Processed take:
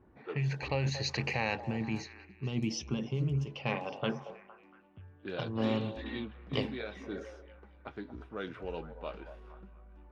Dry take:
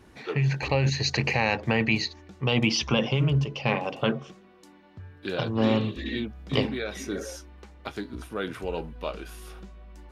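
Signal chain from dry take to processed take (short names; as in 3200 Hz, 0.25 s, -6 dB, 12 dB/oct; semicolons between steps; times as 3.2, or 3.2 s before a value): spectral gain 1.61–3.47, 450–5100 Hz -11 dB; delay with a stepping band-pass 0.231 s, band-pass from 650 Hz, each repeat 0.7 oct, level -9.5 dB; low-pass opened by the level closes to 1100 Hz, open at -20.5 dBFS; gain -8 dB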